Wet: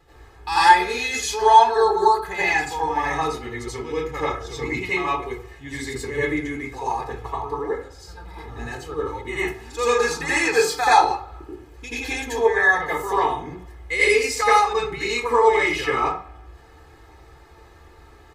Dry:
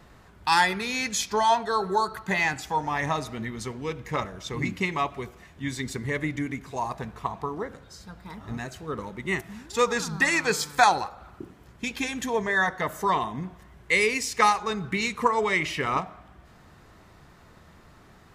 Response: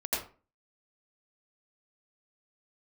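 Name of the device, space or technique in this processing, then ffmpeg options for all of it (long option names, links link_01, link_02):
microphone above a desk: -filter_complex "[0:a]aecho=1:1:2.4:0.88[link_01];[1:a]atrim=start_sample=2205[link_02];[link_01][link_02]afir=irnorm=-1:irlink=0,volume=-4.5dB"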